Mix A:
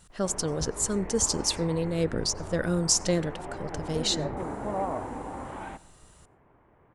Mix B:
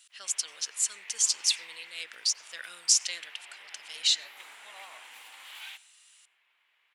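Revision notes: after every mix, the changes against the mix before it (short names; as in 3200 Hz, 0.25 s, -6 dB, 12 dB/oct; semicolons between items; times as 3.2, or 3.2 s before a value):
background: remove Gaussian blur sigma 3.3 samples; master: add resonant high-pass 2700 Hz, resonance Q 2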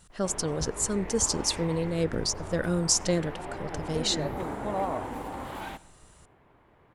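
speech: send -6.0 dB; master: remove resonant high-pass 2700 Hz, resonance Q 2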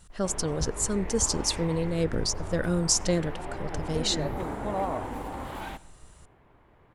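master: add low shelf 62 Hz +9 dB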